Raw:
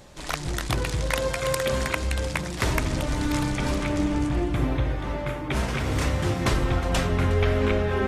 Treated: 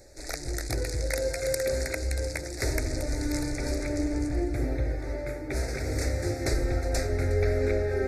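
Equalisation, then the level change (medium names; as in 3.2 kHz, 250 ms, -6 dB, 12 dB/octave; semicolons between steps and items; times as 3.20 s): Chebyshev band-stop 2.1–4.4 kHz, order 2; static phaser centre 440 Hz, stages 4; 0.0 dB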